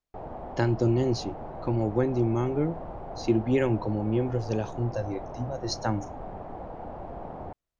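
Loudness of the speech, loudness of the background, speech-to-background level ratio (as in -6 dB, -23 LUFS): -28.5 LUFS, -40.0 LUFS, 11.5 dB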